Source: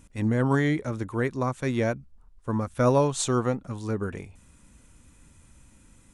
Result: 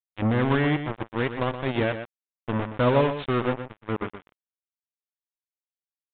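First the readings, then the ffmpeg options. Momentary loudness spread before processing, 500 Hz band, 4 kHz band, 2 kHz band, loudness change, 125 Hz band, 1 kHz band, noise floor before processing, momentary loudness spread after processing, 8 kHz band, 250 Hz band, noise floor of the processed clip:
9 LU, +0.5 dB, +3.0 dB, +3.0 dB, +0.5 dB, -0.5 dB, +2.0 dB, -57 dBFS, 11 LU, under -40 dB, 0.0 dB, under -85 dBFS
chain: -af "acrusher=bits=3:mix=0:aa=0.5,aecho=1:1:122:0.316,aresample=8000,aresample=44100"

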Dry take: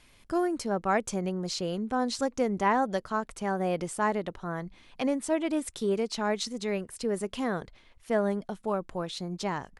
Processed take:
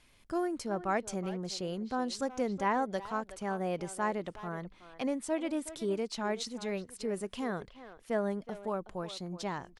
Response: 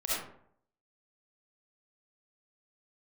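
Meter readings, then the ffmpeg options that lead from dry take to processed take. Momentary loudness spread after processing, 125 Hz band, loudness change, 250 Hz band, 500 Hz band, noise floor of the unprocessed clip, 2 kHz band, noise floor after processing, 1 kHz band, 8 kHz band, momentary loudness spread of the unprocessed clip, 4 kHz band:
7 LU, -5.0 dB, -5.0 dB, -5.0 dB, -5.0 dB, -59 dBFS, -5.0 dB, -60 dBFS, -5.0 dB, -5.0 dB, 6 LU, -5.0 dB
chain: -filter_complex "[0:a]asplit=2[a][b];[b]adelay=370,highpass=300,lowpass=3.4k,asoftclip=type=hard:threshold=-22dB,volume=-13dB[c];[a][c]amix=inputs=2:normalize=0,volume=-5dB"

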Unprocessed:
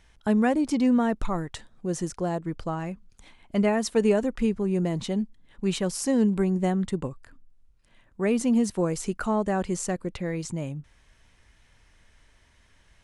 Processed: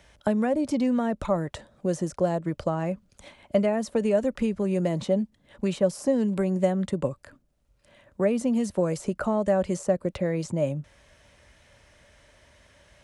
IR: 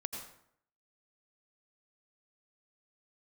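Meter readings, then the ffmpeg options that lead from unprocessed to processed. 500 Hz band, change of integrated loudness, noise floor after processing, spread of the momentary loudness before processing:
+2.5 dB, 0.0 dB, -65 dBFS, 11 LU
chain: -filter_complex "[0:a]highpass=57,acrossover=split=190|1300[a][b][c];[a]acompressor=threshold=-36dB:ratio=4[d];[b]acompressor=threshold=-32dB:ratio=4[e];[c]acompressor=threshold=-46dB:ratio=4[f];[d][e][f]amix=inputs=3:normalize=0,equalizer=f=580:w=5.4:g=14,volume=4.5dB"

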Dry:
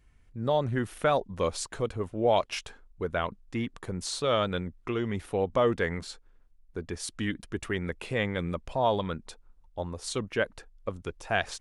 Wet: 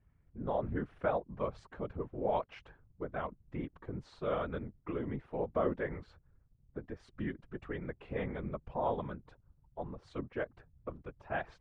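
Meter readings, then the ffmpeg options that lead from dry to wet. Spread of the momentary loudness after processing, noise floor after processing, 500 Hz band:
13 LU, -70 dBFS, -8.0 dB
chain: -af "lowpass=1.6k,afftfilt=real='hypot(re,im)*cos(2*PI*random(0))':imag='hypot(re,im)*sin(2*PI*random(1))':win_size=512:overlap=0.75,volume=-1.5dB"

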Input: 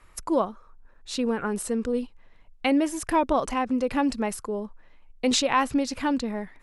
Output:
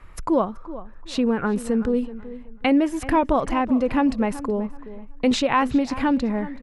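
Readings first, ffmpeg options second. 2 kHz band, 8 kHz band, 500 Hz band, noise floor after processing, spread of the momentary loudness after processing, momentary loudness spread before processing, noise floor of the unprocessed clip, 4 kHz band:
+2.5 dB, -6.0 dB, +3.5 dB, -41 dBFS, 16 LU, 9 LU, -54 dBFS, -1.5 dB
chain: -filter_complex "[0:a]bass=f=250:g=5,treble=f=4k:g=-11,asplit=2[a][b];[b]acompressor=threshold=-29dB:ratio=6,volume=0.5dB[c];[a][c]amix=inputs=2:normalize=0,asplit=2[d][e];[e]adelay=378,lowpass=f=2.3k:p=1,volume=-15dB,asplit=2[f][g];[g]adelay=378,lowpass=f=2.3k:p=1,volume=0.28,asplit=2[h][i];[i]adelay=378,lowpass=f=2.3k:p=1,volume=0.28[j];[d][f][h][j]amix=inputs=4:normalize=0"

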